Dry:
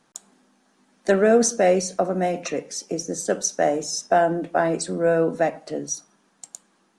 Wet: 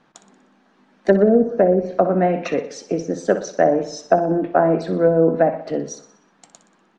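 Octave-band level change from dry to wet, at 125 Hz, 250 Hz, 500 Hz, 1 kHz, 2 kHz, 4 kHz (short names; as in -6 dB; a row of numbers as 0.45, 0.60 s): +6.5, +5.5, +4.0, +2.5, -1.5, -6.5 dB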